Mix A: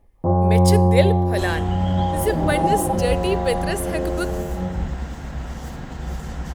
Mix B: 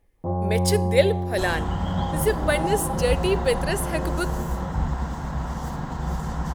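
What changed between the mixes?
first sound -8.0 dB; second sound: add fifteen-band EQ 160 Hz +5 dB, 1000 Hz +10 dB, 2500 Hz -6 dB

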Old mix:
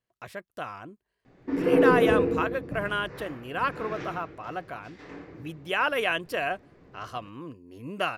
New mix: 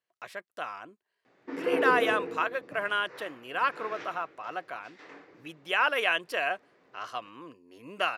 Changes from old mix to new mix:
background: send -6.5 dB; master: add weighting filter A

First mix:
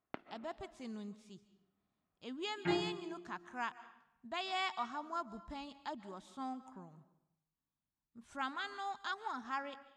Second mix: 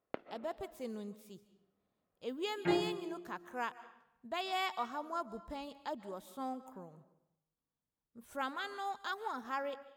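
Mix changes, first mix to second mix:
speech: remove LPF 7800 Hz 24 dB/oct; master: add bell 500 Hz +12.5 dB 0.55 oct

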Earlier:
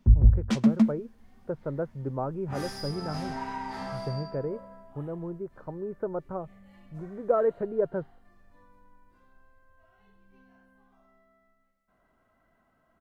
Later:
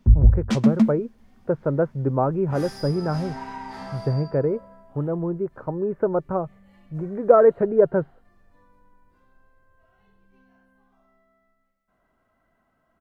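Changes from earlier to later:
speech +10.0 dB; first sound +3.5 dB

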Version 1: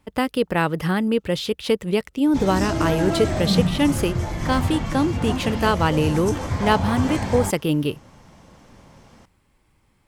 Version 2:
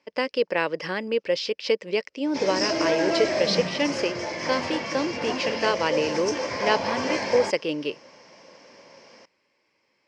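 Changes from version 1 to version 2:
background +4.5 dB; master: add speaker cabinet 460–5500 Hz, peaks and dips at 540 Hz +5 dB, 780 Hz -8 dB, 1300 Hz -9 dB, 2300 Hz +3 dB, 3600 Hz -8 dB, 5200 Hz +10 dB

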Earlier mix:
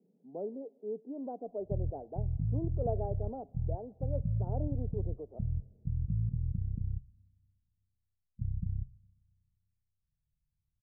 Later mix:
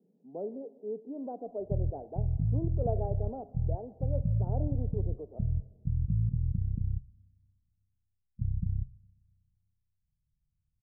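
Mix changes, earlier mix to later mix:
speech: send +9.0 dB; background +3.5 dB

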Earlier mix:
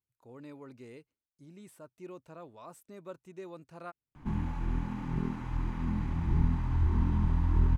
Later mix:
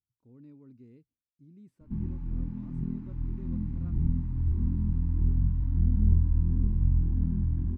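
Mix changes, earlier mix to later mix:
background: entry -2.35 s; master: add EQ curve 250 Hz 0 dB, 660 Hz -20 dB, 2300 Hz -19 dB, 3300 Hz -21 dB, 5000 Hz -18 dB, 9000 Hz -28 dB

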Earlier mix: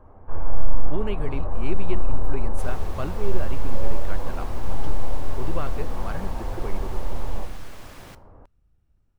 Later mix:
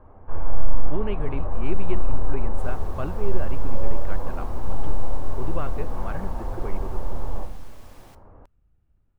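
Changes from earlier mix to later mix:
speech: add running mean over 8 samples; second sound -10.0 dB; master: add high shelf 5100 Hz +5.5 dB

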